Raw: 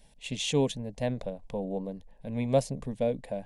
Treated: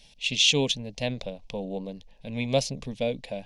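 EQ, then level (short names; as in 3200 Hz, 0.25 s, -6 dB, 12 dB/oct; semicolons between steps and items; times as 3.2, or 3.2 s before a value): band shelf 3800 Hz +13 dB; 0.0 dB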